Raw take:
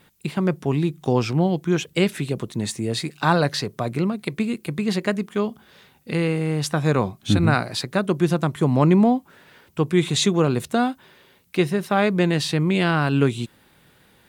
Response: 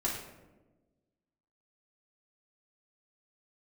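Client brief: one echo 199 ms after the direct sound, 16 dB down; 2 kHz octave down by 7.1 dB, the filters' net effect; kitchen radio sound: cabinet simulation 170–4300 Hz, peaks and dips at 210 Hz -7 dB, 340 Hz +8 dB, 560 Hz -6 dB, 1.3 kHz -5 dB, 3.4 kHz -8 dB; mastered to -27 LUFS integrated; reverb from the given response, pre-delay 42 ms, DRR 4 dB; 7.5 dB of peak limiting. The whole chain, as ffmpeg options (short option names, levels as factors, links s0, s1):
-filter_complex "[0:a]equalizer=f=2000:t=o:g=-7.5,alimiter=limit=0.224:level=0:latency=1,aecho=1:1:199:0.158,asplit=2[s0][s1];[1:a]atrim=start_sample=2205,adelay=42[s2];[s1][s2]afir=irnorm=-1:irlink=0,volume=0.335[s3];[s0][s3]amix=inputs=2:normalize=0,highpass=170,equalizer=f=210:t=q:w=4:g=-7,equalizer=f=340:t=q:w=4:g=8,equalizer=f=560:t=q:w=4:g=-6,equalizer=f=1300:t=q:w=4:g=-5,equalizer=f=3400:t=q:w=4:g=-8,lowpass=f=4300:w=0.5412,lowpass=f=4300:w=1.3066,volume=0.596"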